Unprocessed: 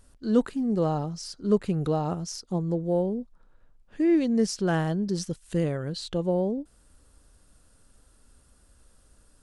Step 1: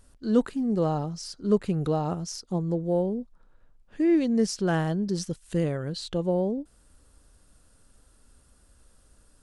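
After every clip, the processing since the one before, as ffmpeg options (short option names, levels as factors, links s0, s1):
-af anull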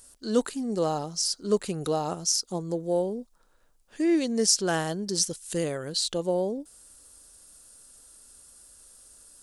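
-af "bass=f=250:g=-10,treble=f=4000:g=14,volume=1.12"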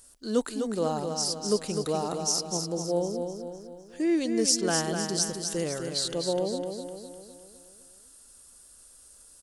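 -af "aecho=1:1:253|506|759|1012|1265|1518:0.501|0.246|0.12|0.059|0.0289|0.0142,volume=0.794"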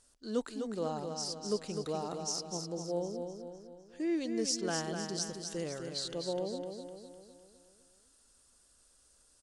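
-af "lowpass=7100,volume=0.422"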